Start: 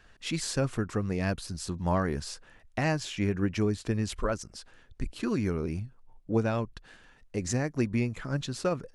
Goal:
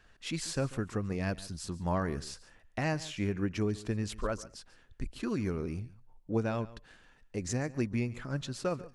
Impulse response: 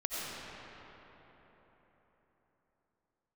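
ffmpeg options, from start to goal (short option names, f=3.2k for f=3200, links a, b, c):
-filter_complex "[0:a]asplit=2[a][b];[1:a]atrim=start_sample=2205,atrim=end_sample=3087,adelay=141[c];[b][c]afir=irnorm=-1:irlink=0,volume=-16.5dB[d];[a][d]amix=inputs=2:normalize=0,volume=-4dB"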